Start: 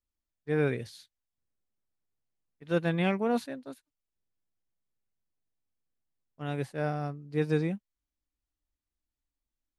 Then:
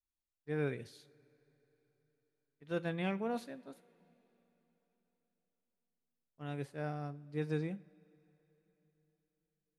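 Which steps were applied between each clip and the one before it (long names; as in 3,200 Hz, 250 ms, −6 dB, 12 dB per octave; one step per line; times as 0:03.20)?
coupled-rooms reverb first 0.37 s, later 4 s, from −20 dB, DRR 14.5 dB
level −8.5 dB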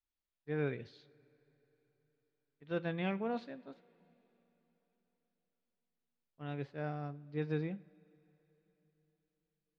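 low-pass filter 4,500 Hz 24 dB per octave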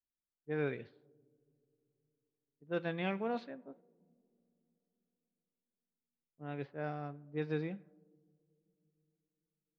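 low-pass that shuts in the quiet parts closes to 340 Hz, open at −32 dBFS
low-shelf EQ 120 Hz −10.5 dB
level +1.5 dB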